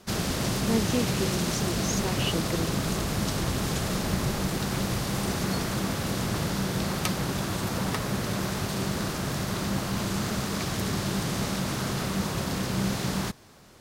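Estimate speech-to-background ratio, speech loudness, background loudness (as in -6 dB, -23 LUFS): -3.5 dB, -32.0 LUFS, -28.5 LUFS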